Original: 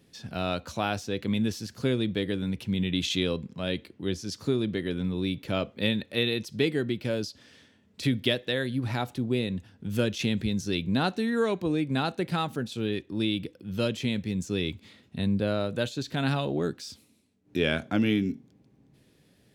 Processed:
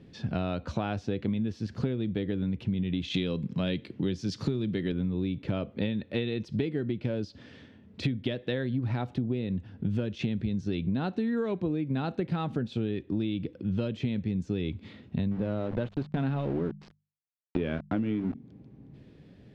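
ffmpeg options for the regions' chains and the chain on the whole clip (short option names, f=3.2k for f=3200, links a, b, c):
-filter_complex "[0:a]asettb=1/sr,asplit=3[a][b][c];[a]atrim=end=3.144[d];[b]atrim=start=3.14:end=4.92,asetpts=PTS-STARTPTS,afade=t=in:d=0.004:c=qsin,afade=t=out:st=1.776:d=0.004:c=qsin,highpass=f=120:t=q:w=1.5,highshelf=f=2.3k:g=10.5[e];[c]atrim=start=4.916[f];[d][e]acrossfade=d=0.004:c1=hsin:c2=qsin[g];[g][f]acrossfade=d=0.004:c1=qsin:c2=hsin,asettb=1/sr,asplit=3[h][i][j];[h]atrim=end=15.314[k];[i]atrim=start=15.31:end=18.35,asetpts=PTS-STARTPTS,afade=t=in:d=0.004:c=qsin,afade=t=out:st=3.036:d=0.004:c=qsin,aeval=exprs='val(0)*gte(abs(val(0)),0.02)':c=same,aemphasis=mode=reproduction:type=75fm,bandreject=f=50:t=h:w=6,bandreject=f=100:t=h:w=6,bandreject=f=150:t=h:w=6,bandreject=f=200:t=h:w=6[l];[j]atrim=start=18.346[m];[k][l]acrossfade=d=0.004:c1=hsin:c2=qsin[n];[n][m]acrossfade=d=0.004:c1=qsin:c2=hsin,lowpass=3.5k,lowshelf=f=500:g=9.5,acompressor=threshold=-28dB:ratio=12,volume=2dB"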